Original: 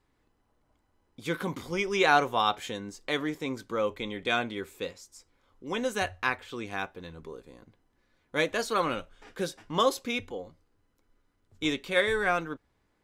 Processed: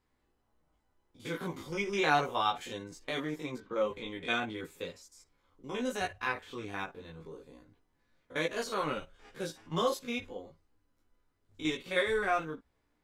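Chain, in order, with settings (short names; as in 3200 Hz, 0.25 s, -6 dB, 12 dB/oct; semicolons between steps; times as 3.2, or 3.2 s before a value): stepped spectrum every 50 ms; 3.58–4.07 low-pass opened by the level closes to 1900 Hz, open at -27.5 dBFS; chorus voices 4, 0.19 Hz, delay 16 ms, depth 4.2 ms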